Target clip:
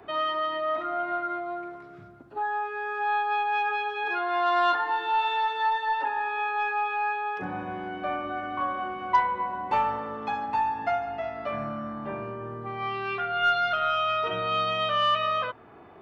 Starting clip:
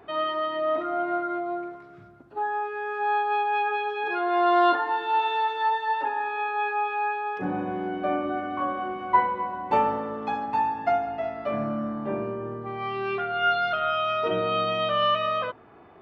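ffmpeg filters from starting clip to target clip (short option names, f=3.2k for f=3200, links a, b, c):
-filter_complex "[0:a]acrossover=split=130|760|2100[a][b][c][d];[b]acompressor=threshold=-39dB:ratio=6[e];[a][e][c][d]amix=inputs=4:normalize=0,aeval=exprs='0.266*(cos(1*acos(clip(val(0)/0.266,-1,1)))-cos(1*PI/2))+0.00944*(cos(5*acos(clip(val(0)/0.266,-1,1)))-cos(5*PI/2))+0.00188*(cos(6*acos(clip(val(0)/0.266,-1,1)))-cos(6*PI/2))':c=same"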